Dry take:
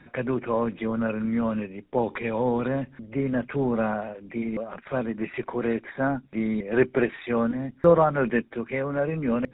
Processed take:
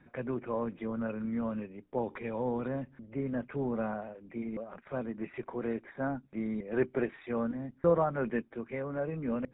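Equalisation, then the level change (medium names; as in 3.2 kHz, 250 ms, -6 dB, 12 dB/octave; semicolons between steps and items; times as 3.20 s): treble shelf 2.9 kHz -11 dB; -8.0 dB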